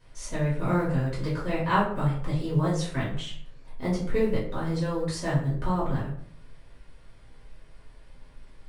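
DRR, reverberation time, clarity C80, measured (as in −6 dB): −8.0 dB, 0.60 s, 9.0 dB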